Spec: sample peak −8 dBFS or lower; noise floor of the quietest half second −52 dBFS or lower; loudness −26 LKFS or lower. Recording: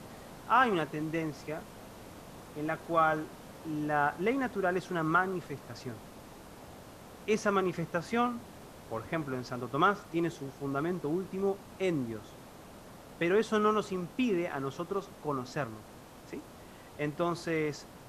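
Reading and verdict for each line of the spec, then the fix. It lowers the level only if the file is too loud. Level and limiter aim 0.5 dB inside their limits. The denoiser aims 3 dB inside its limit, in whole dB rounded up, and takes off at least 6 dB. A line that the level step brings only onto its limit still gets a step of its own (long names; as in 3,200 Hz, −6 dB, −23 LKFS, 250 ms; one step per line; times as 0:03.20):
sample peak −12.5 dBFS: in spec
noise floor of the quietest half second −51 dBFS: out of spec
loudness −32.0 LKFS: in spec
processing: broadband denoise 6 dB, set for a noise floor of −51 dBFS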